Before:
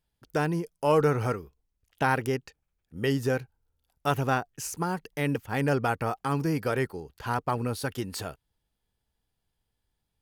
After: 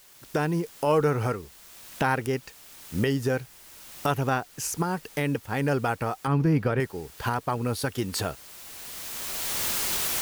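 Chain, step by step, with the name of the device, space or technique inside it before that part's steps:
cheap recorder with automatic gain (white noise bed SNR 25 dB; camcorder AGC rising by 16 dB per second)
0:06.27–0:06.80: bass and treble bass +6 dB, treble −12 dB

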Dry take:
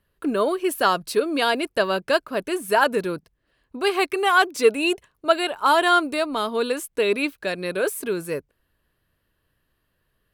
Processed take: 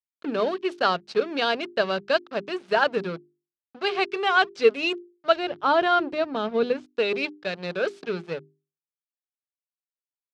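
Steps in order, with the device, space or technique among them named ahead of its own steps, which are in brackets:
blown loudspeaker (dead-zone distortion −33.5 dBFS; loudspeaker in its box 150–5,100 Hz, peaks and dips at 170 Hz +7 dB, 310 Hz −5 dB, 1,000 Hz −6 dB, 1,900 Hz −3 dB)
mains-hum notches 50/100/150/200/250/300/350/400 Hz
0:05.36–0:06.86: spectral tilt −3 dB per octave

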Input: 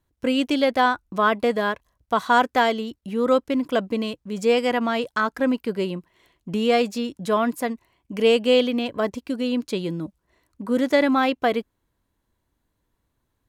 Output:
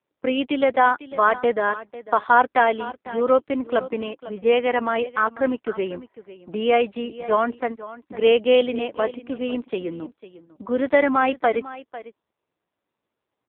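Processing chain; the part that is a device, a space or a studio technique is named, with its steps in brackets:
low-pass that shuts in the quiet parts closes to 1,000 Hz, open at −15.5 dBFS
0:04.64–0:05.55: dynamic equaliser 5,200 Hz, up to −4 dB, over −52 dBFS, Q 3.3
satellite phone (band-pass filter 340–3,100 Hz; single-tap delay 499 ms −16.5 dB; level +3 dB; AMR narrowband 5.9 kbit/s 8,000 Hz)

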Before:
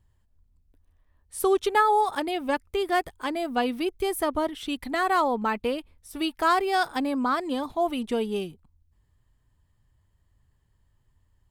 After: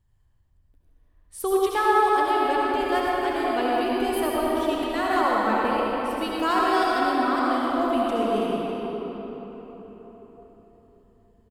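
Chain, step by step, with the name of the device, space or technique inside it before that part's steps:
cave (single-tap delay 327 ms −13.5 dB; convolution reverb RT60 4.5 s, pre-delay 63 ms, DRR −5.5 dB)
level −4 dB

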